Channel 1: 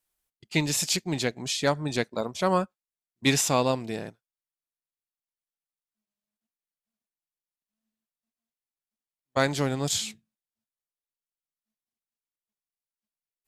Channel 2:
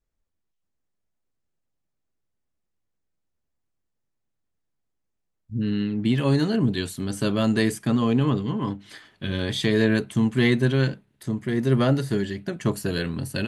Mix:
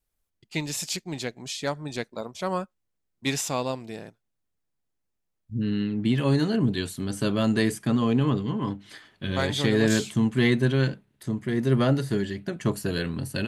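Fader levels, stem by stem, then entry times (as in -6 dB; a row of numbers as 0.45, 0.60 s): -4.5, -1.5 dB; 0.00, 0.00 s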